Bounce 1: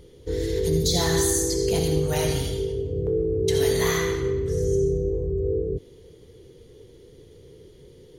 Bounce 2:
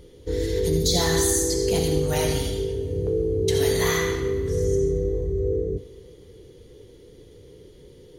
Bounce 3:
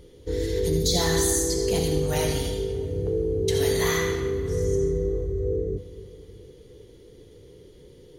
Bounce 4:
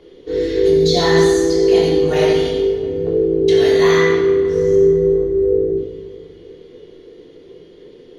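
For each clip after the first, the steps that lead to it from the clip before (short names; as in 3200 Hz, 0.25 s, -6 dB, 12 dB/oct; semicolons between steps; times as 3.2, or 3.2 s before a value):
two-slope reverb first 0.26 s, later 4 s, from -20 dB, DRR 11.5 dB; gain +1 dB
darkening echo 0.308 s, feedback 57%, low-pass 2200 Hz, level -16.5 dB; gain -1.5 dB
three-band isolator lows -20 dB, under 220 Hz, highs -22 dB, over 4700 Hz; shoebox room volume 470 m³, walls furnished, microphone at 3.3 m; gain +4.5 dB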